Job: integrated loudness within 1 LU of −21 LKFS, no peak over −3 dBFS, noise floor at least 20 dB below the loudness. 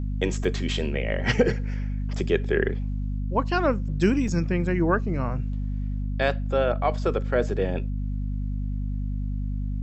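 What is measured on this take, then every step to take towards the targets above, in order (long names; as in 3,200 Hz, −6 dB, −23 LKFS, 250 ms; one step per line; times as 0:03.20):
number of dropouts 2; longest dropout 3.7 ms; mains hum 50 Hz; hum harmonics up to 250 Hz; level of the hum −25 dBFS; integrated loudness −26.5 LKFS; sample peak −7.5 dBFS; target loudness −21.0 LKFS
→ repair the gap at 0:00.44/0:04.28, 3.7 ms
mains-hum notches 50/100/150/200/250 Hz
level +5.5 dB
brickwall limiter −3 dBFS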